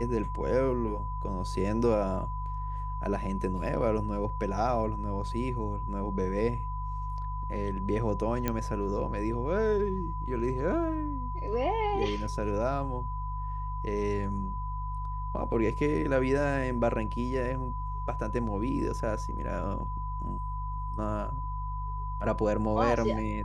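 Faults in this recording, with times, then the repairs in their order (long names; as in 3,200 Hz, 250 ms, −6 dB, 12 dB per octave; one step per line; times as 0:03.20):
mains hum 50 Hz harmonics 3 −35 dBFS
whistle 1,000 Hz −37 dBFS
0:08.48: click −14 dBFS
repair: click removal
notch filter 1,000 Hz, Q 30
hum removal 50 Hz, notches 3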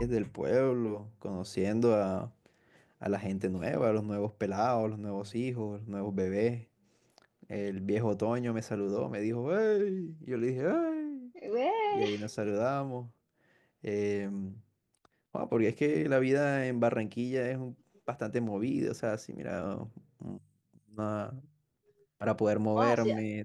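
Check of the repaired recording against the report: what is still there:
none of them is left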